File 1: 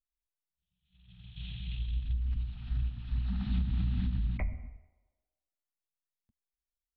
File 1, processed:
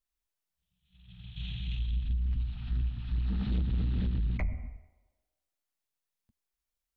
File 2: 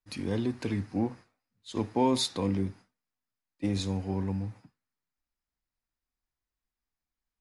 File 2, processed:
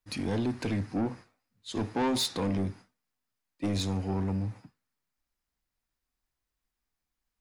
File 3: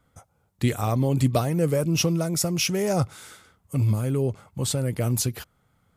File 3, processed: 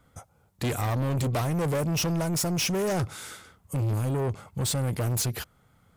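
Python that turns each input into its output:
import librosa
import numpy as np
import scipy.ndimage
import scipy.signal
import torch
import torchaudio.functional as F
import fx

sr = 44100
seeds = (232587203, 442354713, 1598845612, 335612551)

y = 10.0 ** (-28.0 / 20.0) * np.tanh(x / 10.0 ** (-28.0 / 20.0))
y = y * 10.0 ** (4.0 / 20.0)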